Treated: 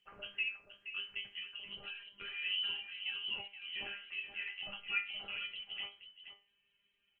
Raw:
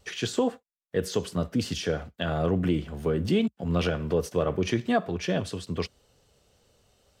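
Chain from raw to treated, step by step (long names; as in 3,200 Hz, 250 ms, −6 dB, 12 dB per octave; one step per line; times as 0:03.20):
0:01.38–0:02.42: downward compressor 12 to 1, threshold −27 dBFS, peak gain reduction 7.5 dB
0:03.34–0:04.83: low-shelf EQ 410 Hz −6.5 dB
voice inversion scrambler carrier 3,100 Hz
parametric band 2,000 Hz +7 dB 0.55 octaves
tuned comb filter 200 Hz, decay 0.3 s, harmonics all, mix 90%
single-tap delay 474 ms −10.5 dB
level −5 dB
Opus 16 kbit/s 48,000 Hz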